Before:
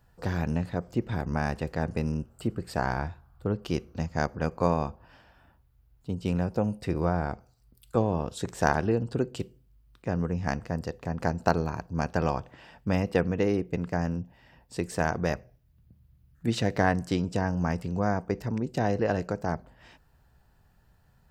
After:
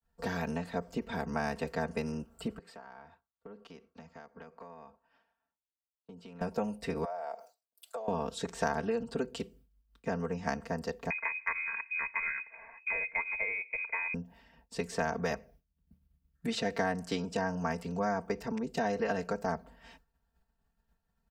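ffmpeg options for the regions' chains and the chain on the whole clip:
-filter_complex "[0:a]asettb=1/sr,asplit=3[a][b][c];[a]atrim=end=2.584[d];[b]atrim=start=2.58:end=6.41,asetpts=PTS-STARTPTS,afade=t=in:d=0.004:c=qsin,afade=t=out:st=3.826:d=0.004:c=qsin,highpass=f=650:p=1,acompressor=threshold=-44dB:ratio=8:attack=3.2:release=140:knee=1:detection=peak,aemphasis=mode=reproduction:type=75kf[e];[c]atrim=start=6.406[f];[d][e]acrossfade=d=0.004:c1=hsin:c2=qsin[g];[g][f]acrossfade=d=0.004:c1=qsin:c2=hsin,asettb=1/sr,asplit=3[h][i][j];[h]atrim=end=7.044[k];[i]atrim=start=7.04:end=8.08,asetpts=PTS-STARTPTS,afade=t=in:d=0.004:c=qsin,afade=t=out:st=1.036:d=0.004:c=qsin,highshelf=f=3.6k:g=9.5,acompressor=threshold=-38dB:ratio=10:attack=3.2:release=140:knee=1:detection=peak,highpass=f=630:t=q:w=4.5[l];[j]atrim=start=8.076[m];[k][l]acrossfade=d=0.004:c1=hsin:c2=qsin[n];[n][m]acrossfade=d=0.004:c1=qsin:c2=hsin,asettb=1/sr,asplit=3[o][p][q];[o]atrim=end=11.104[r];[p]atrim=start=11.1:end=14.14,asetpts=PTS-STARTPTS,afade=t=in:d=0.004:c=qsin,afade=t=out:st=3.036:d=0.004:c=qsin,aecho=1:1:1.9:0.51,atrim=end_sample=134064,lowpass=f=2.2k:t=q:w=0.5098,lowpass=f=2.2k:t=q:w=0.6013,lowpass=f=2.2k:t=q:w=0.9,lowpass=f=2.2k:t=q:w=2.563,afreqshift=-2600[s];[q]atrim=start=14.136[t];[r][s]acrossfade=d=0.004:c1=hsin:c2=qsin[u];[u][t]acrossfade=d=0.004:c1=qsin:c2=hsin,agate=range=-33dB:threshold=-51dB:ratio=3:detection=peak,aecho=1:1:4.4:0.94,acrossover=split=100|380|860|7400[v][w][x][y][z];[v]acompressor=threshold=-52dB:ratio=4[aa];[w]acompressor=threshold=-36dB:ratio=4[ab];[x]acompressor=threshold=-31dB:ratio=4[ac];[y]acompressor=threshold=-32dB:ratio=4[ad];[z]acompressor=threshold=-56dB:ratio=4[ae];[aa][ab][ac][ad][ae]amix=inputs=5:normalize=0,volume=-2.5dB"

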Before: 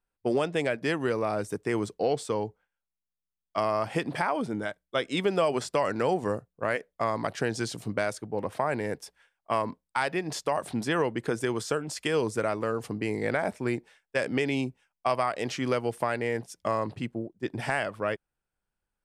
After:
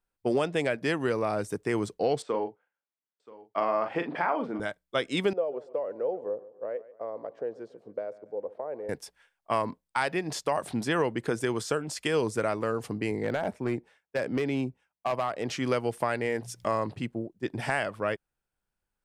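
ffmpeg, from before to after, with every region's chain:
-filter_complex "[0:a]asettb=1/sr,asplit=3[a][b][c];[a]atrim=end=2.224[d];[b]atrim=start=2.22:end=4.6,asetpts=PTS-STARTPTS,afade=t=in:d=0.004:c=qsin,afade=t=out:st=2.376:d=0.004:c=qsin,highpass=260,lowpass=2.4k,asplit=2[e][f];[f]adelay=41,volume=-7.5dB[g];[e][g]amix=inputs=2:normalize=0,atrim=end_sample=104958,aecho=1:1:978:0.1,atrim=end_sample=104958[h];[c]atrim=start=4.596[i];[d][h]acrossfade=d=0.004:c1=hsin:c2=qsin[j];[j][i]acrossfade=d=0.004:c1=qsin:c2=hsin,asettb=1/sr,asplit=3[k][l][m];[k]atrim=end=5.334[n];[l]atrim=start=5.33:end=8.89,asetpts=PTS-STARTPTS,afade=t=in:d=0.004:c=qsin,afade=t=out:st=3.556:d=0.004:c=qsin,bandpass=f=500:t=q:w=4.1,aecho=1:1:142|284|426|568:0.126|0.0554|0.0244|0.0107,atrim=end_sample=156996[o];[m]atrim=start=8.886[p];[n][o]acrossfade=d=0.004:c1=hsin:c2=qsin[q];[q][p]acrossfade=d=0.004:c1=qsin:c2=hsin,asettb=1/sr,asplit=3[r][s][t];[r]atrim=end=13.114[u];[s]atrim=start=13.11:end=15.5,asetpts=PTS-STARTPTS,afade=t=in:d=0.004:c=qsin,afade=t=out:st=2.386:d=0.004:c=qsin,highpass=f=53:w=0.5412,highpass=f=53:w=1.3066,highshelf=f=2k:g=-9,asoftclip=type=hard:threshold=-21.5dB[v];[t]atrim=start=15.496[w];[u][v]acrossfade=d=0.004:c1=hsin:c2=qsin[x];[x][w]acrossfade=d=0.004:c1=qsin:c2=hsin,asettb=1/sr,asplit=3[y][z][aa];[y]atrim=end=16.254[ab];[z]atrim=start=16.25:end=16.8,asetpts=PTS-STARTPTS,afade=t=in:d=0.004:c=qsin,afade=t=out:st=0.546:d=0.004:c=qsin,bandreject=f=60:t=h:w=6,bandreject=f=120:t=h:w=6,bandreject=f=180:t=h:w=6,acompressor=mode=upward:threshold=-32dB:ratio=2.5:attack=3.2:release=140:knee=2.83:detection=peak[ac];[aa]atrim=start=16.796[ad];[ab][ac]acrossfade=d=0.004:c1=hsin:c2=qsin[ae];[ae][ad]acrossfade=d=0.004:c1=qsin:c2=hsin"

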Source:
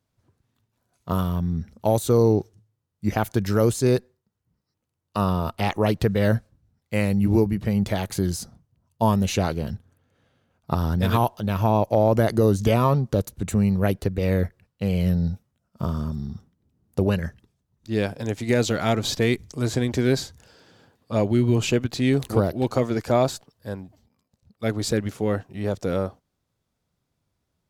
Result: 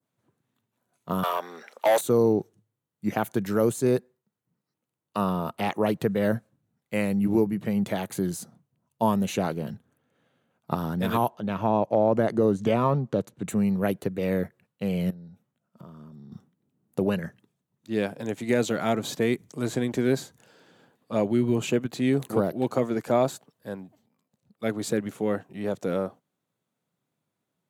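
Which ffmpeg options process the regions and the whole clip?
-filter_complex "[0:a]asettb=1/sr,asplit=3[a][b][c];[a]atrim=end=1.234[d];[b]atrim=start=1.23:end=2.01,asetpts=PTS-STARTPTS,afade=t=in:d=0.004:c=qsin,afade=t=out:st=0.776:d=0.004:c=qsin,highpass=f=470:w=0.5412,highpass=f=470:w=1.3066,asplit=2[e][f];[f]highpass=f=720:p=1,volume=24dB,asoftclip=type=tanh:threshold=-10.5dB[g];[e][g]amix=inputs=2:normalize=0,lowpass=f=3.8k:p=1,volume=-6dB[h];[c]atrim=start=2.006[i];[d][h]acrossfade=d=0.004:c1=hsin:c2=qsin[j];[j][i]acrossfade=d=0.004:c1=qsin:c2=hsin,asettb=1/sr,asplit=3[k][l][m];[k]atrim=end=11.304[n];[l]atrim=start=11.3:end=13.47,asetpts=PTS-STARTPTS,afade=t=in:d=0.004:c=qsin,afade=t=out:st=2.166:d=0.004:c=qsin,highshelf=f=5.9k:g=7,adynamicsmooth=sensitivity=0.5:basefreq=4.3k[o];[m]atrim=start=13.466[p];[n][o]acrossfade=d=0.004:c1=hsin:c2=qsin[q];[q][p]acrossfade=d=0.004:c1=qsin:c2=hsin,asettb=1/sr,asplit=3[r][s][t];[r]atrim=end=15.104[u];[s]atrim=start=15.1:end=16.32,asetpts=PTS-STARTPTS,afade=t=in:d=0.004:c=qsin,afade=t=out:st=1.216:d=0.004:c=qsin,highshelf=f=5k:g=-5,acompressor=threshold=-38dB:ratio=6:attack=3.2:release=140:knee=1:detection=peak[v];[t]atrim=start=16.316[w];[u][v]acrossfade=d=0.004:c1=hsin:c2=qsin[x];[x][w]acrossfade=d=0.004:c1=qsin:c2=hsin,adynamicequalizer=threshold=0.01:dfrequency=3200:dqfactor=0.75:tfrequency=3200:tqfactor=0.75:attack=5:release=100:ratio=0.375:range=2.5:mode=cutabove:tftype=bell,highpass=f=140:w=0.5412,highpass=f=140:w=1.3066,equalizer=f=5.1k:t=o:w=0.5:g=-8,volume=-2dB"

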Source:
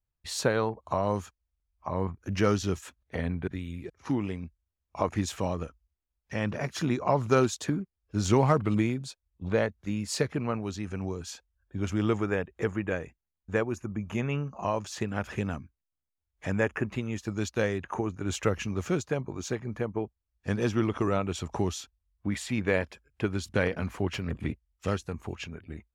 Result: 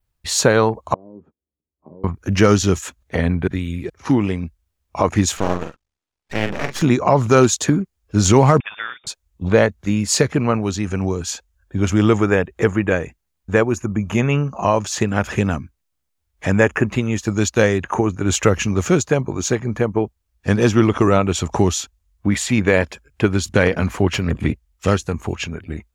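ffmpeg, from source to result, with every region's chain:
-filter_complex "[0:a]asettb=1/sr,asplit=3[a][b][c];[a]atrim=end=0.944[d];[b]atrim=start=0.94:end=2.04,asetpts=PTS-STARTPTS,afade=t=in:d=0.004:c=qsin,afade=t=out:st=1.096:d=0.004:c=qsin,acompressor=threshold=-42dB:ratio=16:attack=3.2:release=140:knee=1:detection=peak,asuperpass=centerf=270:order=4:qfactor=1,asplit=2[e][f];[f]adelay=13,volume=-7.5dB[g];[e][g]amix=inputs=2:normalize=0,atrim=end_sample=48510[h];[c]atrim=start=2.036[i];[d][h]acrossfade=d=0.004:c1=hsin:c2=qsin[j];[j][i]acrossfade=d=0.004:c1=qsin:c2=hsin,asettb=1/sr,asplit=3[k][l][m];[k]atrim=end=5.374[n];[l]atrim=start=5.37:end=6.82,asetpts=PTS-STARTPTS,afade=t=in:d=0.004:c=qsin,afade=t=out:st=1.446:d=0.004:c=qsin,highpass=150,lowpass=6.3k,asplit=2[o][p];[p]adelay=45,volume=-7.5dB[q];[o][q]amix=inputs=2:normalize=0,atrim=end_sample=63945,aeval=exprs='max(val(0),0)':c=same[r];[m]atrim=start=6.816[s];[n][r]acrossfade=d=0.004:c1=hsin:c2=qsin[t];[t][s]acrossfade=d=0.004:c1=qsin:c2=hsin,asettb=1/sr,asplit=3[u][v][w];[u]atrim=end=8.604[x];[v]atrim=start=8.6:end=9.07,asetpts=PTS-STARTPTS,afade=t=in:d=0.004:c=qsin,afade=t=out:st=0.466:d=0.004:c=qsin,highpass=1.4k,lowpass=f=3.2k:t=q:w=0.5098,lowpass=f=3.2k:t=q:w=0.6013,lowpass=f=3.2k:t=q:w=0.9,lowpass=f=3.2k:t=q:w=2.563,afreqshift=-3800[y];[w]atrim=start=9.066[z];[x][y]acrossfade=d=0.004:c1=hsin:c2=qsin[aa];[aa][z]acrossfade=d=0.004:c1=qsin:c2=hsin,adynamicequalizer=threshold=0.00126:dfrequency=6800:dqfactor=4.5:tfrequency=6800:tqfactor=4.5:attack=5:release=100:ratio=0.375:range=3:mode=boostabove:tftype=bell,alimiter=level_in=13.5dB:limit=-1dB:release=50:level=0:latency=1,volume=-1dB"

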